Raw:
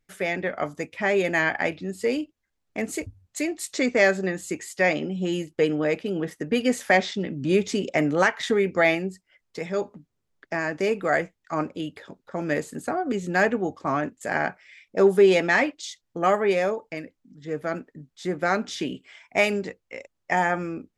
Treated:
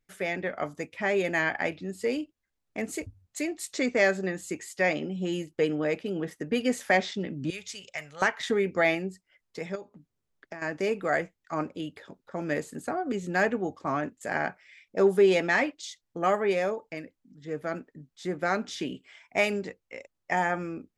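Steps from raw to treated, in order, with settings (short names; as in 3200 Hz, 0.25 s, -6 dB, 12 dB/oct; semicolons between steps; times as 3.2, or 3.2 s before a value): 7.5–8.22 passive tone stack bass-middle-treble 10-0-10; 9.75–10.62 compressor 8:1, threshold -34 dBFS, peak gain reduction 12.5 dB; gain -4 dB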